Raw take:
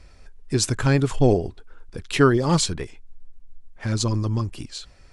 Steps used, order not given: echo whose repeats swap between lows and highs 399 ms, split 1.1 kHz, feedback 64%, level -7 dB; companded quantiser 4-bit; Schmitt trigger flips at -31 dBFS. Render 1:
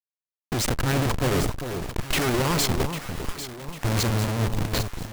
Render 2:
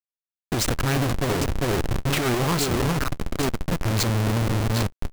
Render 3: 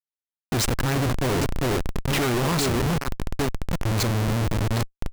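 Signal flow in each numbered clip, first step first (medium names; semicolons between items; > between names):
Schmitt trigger > echo whose repeats swap between lows and highs > companded quantiser; echo whose repeats swap between lows and highs > Schmitt trigger > companded quantiser; echo whose repeats swap between lows and highs > companded quantiser > Schmitt trigger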